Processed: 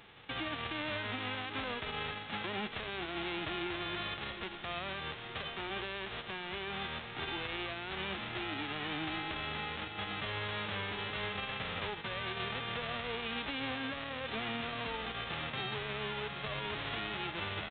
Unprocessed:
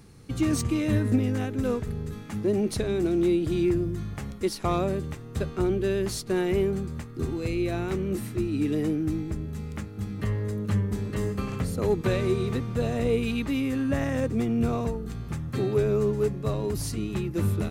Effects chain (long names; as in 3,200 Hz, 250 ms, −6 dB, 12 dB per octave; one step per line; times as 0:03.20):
spectral envelope flattened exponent 0.1
downsampling to 8,000 Hz
downward compressor, threshold −33 dBFS, peak gain reduction 11.5 dB
feedback delay with all-pass diffusion 801 ms, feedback 49%, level −14 dB
brickwall limiter −28.5 dBFS, peak gain reduction 9 dB